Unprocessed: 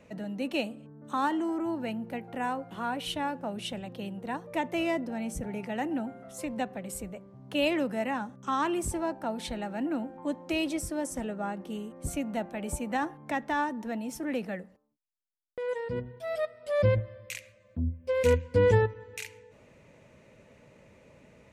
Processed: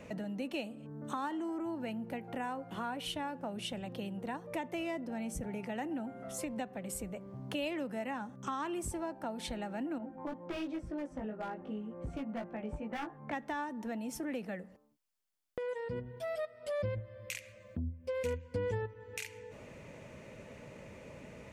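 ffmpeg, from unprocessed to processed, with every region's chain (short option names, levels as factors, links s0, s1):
-filter_complex "[0:a]asettb=1/sr,asplit=3[s0][s1][s2];[s0]atrim=end=9.984[s3];[s1]atrim=start=9.98:end=13.33,asetpts=PTS-STARTPTS,afade=t=in:d=0.004:c=qsin,afade=t=out:st=3.346:d=0.004:c=qsin,lowpass=2000,aeval=exprs='0.0531*(abs(mod(val(0)/0.0531+3,4)-2)-1)':c=same,flanger=delay=17:depth=2:speed=2[s4];[s2]atrim=start=13.326[s5];[s3][s4]acrossfade=d=0.004:c1=hsin:c2=qsin[s6];[s6][s5]acrossfade=d=0.004:c1=qsin:c2=hsin,acompressor=threshold=0.00501:ratio=3,bandreject=f=3900:w=27,volume=2"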